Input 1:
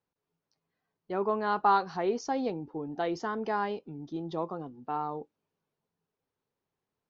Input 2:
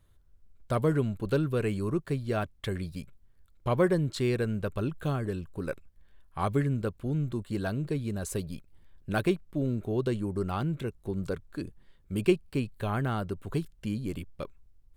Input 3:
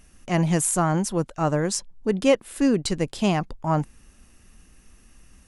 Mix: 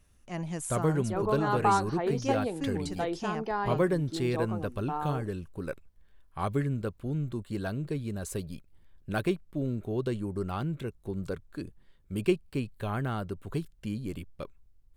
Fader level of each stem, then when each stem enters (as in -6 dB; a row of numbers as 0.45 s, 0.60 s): -1.0 dB, -2.0 dB, -14.0 dB; 0.00 s, 0.00 s, 0.00 s